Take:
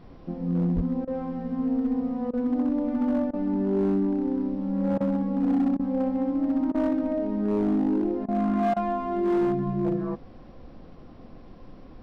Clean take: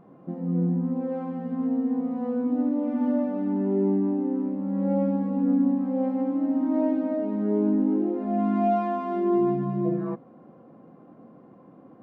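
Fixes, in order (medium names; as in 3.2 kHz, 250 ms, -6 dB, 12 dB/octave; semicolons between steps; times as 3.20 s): clip repair -19 dBFS; 0.75–0.87 s: high-pass 140 Hz 24 dB/octave; interpolate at 1.05/2.31/3.31/4.98/5.77/6.72/8.26/8.74 s, 23 ms; noise print and reduce 6 dB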